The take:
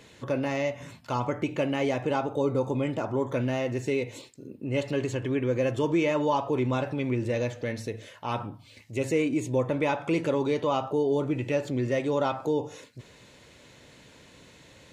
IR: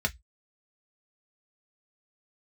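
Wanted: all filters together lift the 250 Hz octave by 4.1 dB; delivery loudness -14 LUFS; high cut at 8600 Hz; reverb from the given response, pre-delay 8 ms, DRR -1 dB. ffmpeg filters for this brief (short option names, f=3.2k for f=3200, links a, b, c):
-filter_complex "[0:a]lowpass=8.6k,equalizer=f=250:t=o:g=5,asplit=2[a][b];[1:a]atrim=start_sample=2205,adelay=8[c];[b][c]afir=irnorm=-1:irlink=0,volume=-7dB[d];[a][d]amix=inputs=2:normalize=0,volume=8dB"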